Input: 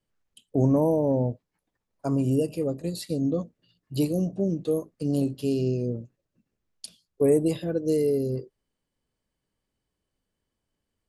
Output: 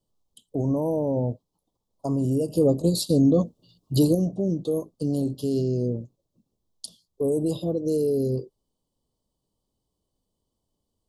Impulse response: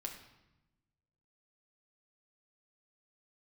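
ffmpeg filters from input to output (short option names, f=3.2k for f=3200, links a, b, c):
-filter_complex "[0:a]alimiter=limit=-19.5dB:level=0:latency=1:release=47,asettb=1/sr,asplit=3[a][b][c];[a]atrim=end=2.554[d];[b]atrim=start=2.55:end=4.15,asetpts=PTS-STARTPTS,afade=t=in:d=0.004:c=qsin,afade=t=out:st=1.596:d=0.004:c=qsin,acontrast=57[e];[c]atrim=start=4.146[f];[d][e]acrossfade=d=0.004:c1=hsin:c2=qsin[g];[g][f]acrossfade=d=0.004:c1=qsin:c2=hsin,asuperstop=centerf=1900:order=8:qfactor=0.92,volume=3dB"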